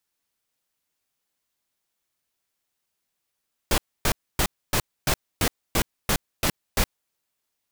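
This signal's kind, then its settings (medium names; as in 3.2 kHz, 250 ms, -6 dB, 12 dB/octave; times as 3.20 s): noise bursts pink, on 0.07 s, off 0.27 s, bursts 10, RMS -21 dBFS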